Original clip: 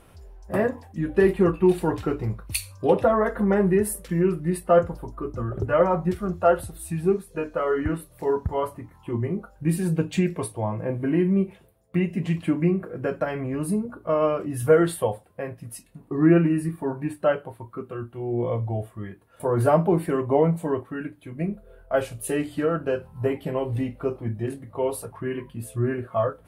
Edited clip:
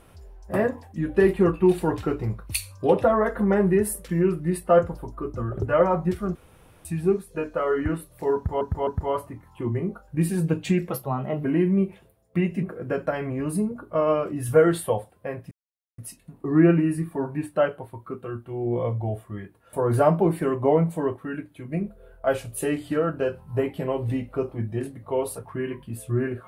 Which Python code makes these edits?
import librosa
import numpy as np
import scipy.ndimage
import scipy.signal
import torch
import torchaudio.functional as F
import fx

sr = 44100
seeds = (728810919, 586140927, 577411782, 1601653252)

y = fx.edit(x, sr, fx.room_tone_fill(start_s=6.35, length_s=0.5),
    fx.repeat(start_s=8.35, length_s=0.26, count=3),
    fx.speed_span(start_s=10.38, length_s=0.65, speed=1.2),
    fx.cut(start_s=12.22, length_s=0.55),
    fx.insert_silence(at_s=15.65, length_s=0.47), tone=tone)